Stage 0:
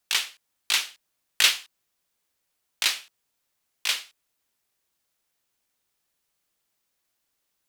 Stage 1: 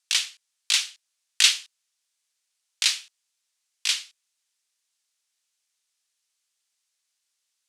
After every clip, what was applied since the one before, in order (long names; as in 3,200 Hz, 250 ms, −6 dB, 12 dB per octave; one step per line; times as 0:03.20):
meter weighting curve ITU-R 468
level −8 dB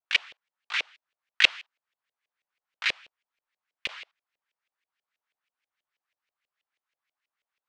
auto-filter low-pass saw up 6.2 Hz 520–2,600 Hz
tilt shelving filter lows −3 dB
level −1.5 dB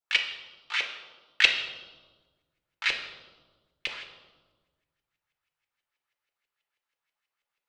convolution reverb RT60 1.4 s, pre-delay 6 ms, DRR 3.5 dB
level −1 dB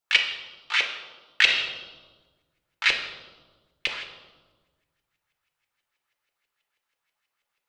boost into a limiter +9.5 dB
level −4 dB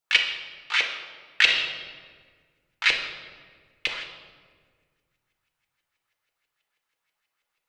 rectangular room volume 2,600 cubic metres, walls mixed, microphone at 0.58 metres